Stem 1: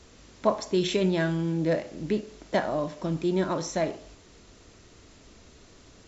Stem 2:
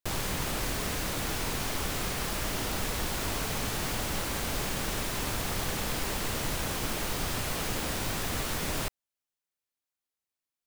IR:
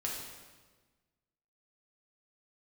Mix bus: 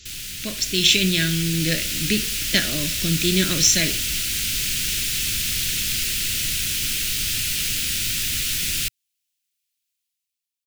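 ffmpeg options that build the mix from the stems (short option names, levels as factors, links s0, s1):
-filter_complex "[0:a]volume=1.19[s0];[1:a]volume=0.398[s1];[s0][s1]amix=inputs=2:normalize=0,firequalizer=gain_entry='entry(110,0);entry(900,-28);entry(1400,-4);entry(2600,11)':delay=0.05:min_phase=1,dynaudnorm=f=110:g=13:m=2.99"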